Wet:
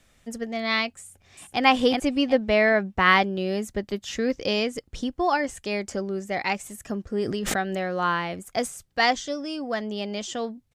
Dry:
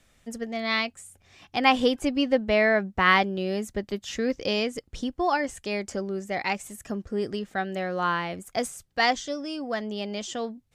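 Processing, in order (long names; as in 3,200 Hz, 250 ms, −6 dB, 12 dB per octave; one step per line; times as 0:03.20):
0:01.00–0:01.62: delay throw 370 ms, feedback 30%, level −2 dB
0:07.25–0:07.88: background raised ahead of every attack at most 32 dB per second
level +1.5 dB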